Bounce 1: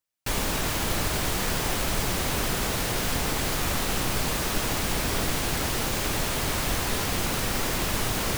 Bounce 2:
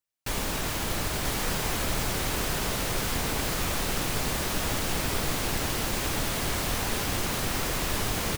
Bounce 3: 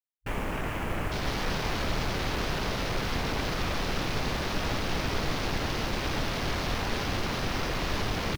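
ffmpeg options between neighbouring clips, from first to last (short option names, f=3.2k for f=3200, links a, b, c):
-af "aecho=1:1:988:0.562,volume=-3dB"
-af "afwtdn=0.0158"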